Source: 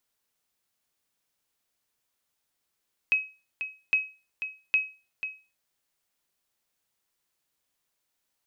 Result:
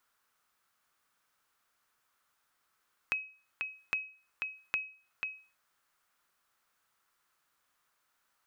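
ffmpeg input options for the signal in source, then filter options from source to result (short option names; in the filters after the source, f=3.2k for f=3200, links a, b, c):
-f lavfi -i "aevalsrc='0.168*(sin(2*PI*2550*mod(t,0.81))*exp(-6.91*mod(t,0.81)/0.32)+0.316*sin(2*PI*2550*max(mod(t,0.81)-0.49,0))*exp(-6.91*max(mod(t,0.81)-0.49,0)/0.32))':d=2.43:s=44100"
-af "equalizer=f=1.3k:t=o:w=1.1:g=14,acompressor=threshold=-38dB:ratio=2.5"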